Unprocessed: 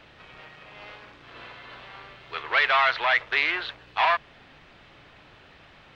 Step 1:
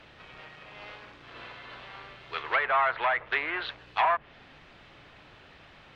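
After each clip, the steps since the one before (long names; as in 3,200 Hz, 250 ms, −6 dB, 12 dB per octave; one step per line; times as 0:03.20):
treble cut that deepens with the level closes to 1,400 Hz, closed at −19 dBFS
level −1 dB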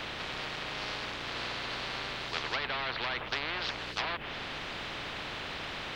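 every bin compressed towards the loudest bin 4 to 1
level −3.5 dB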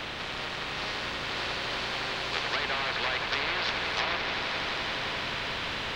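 echo that builds up and dies away 87 ms, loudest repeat 8, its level −12 dB
level +2.5 dB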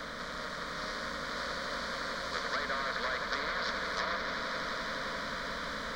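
phaser with its sweep stopped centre 540 Hz, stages 8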